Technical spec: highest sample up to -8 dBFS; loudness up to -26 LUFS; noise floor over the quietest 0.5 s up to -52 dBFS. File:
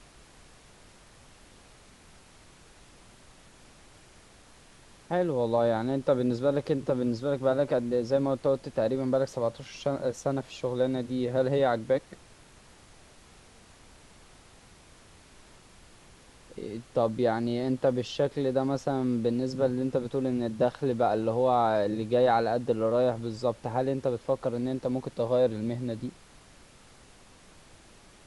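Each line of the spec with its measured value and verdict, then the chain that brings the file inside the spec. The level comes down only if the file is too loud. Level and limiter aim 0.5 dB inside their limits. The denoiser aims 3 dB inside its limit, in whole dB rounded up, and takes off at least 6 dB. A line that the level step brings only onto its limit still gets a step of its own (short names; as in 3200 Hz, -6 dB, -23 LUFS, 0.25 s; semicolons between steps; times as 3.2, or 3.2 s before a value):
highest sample -12.0 dBFS: OK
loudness -28.5 LUFS: OK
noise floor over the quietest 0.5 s -55 dBFS: OK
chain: none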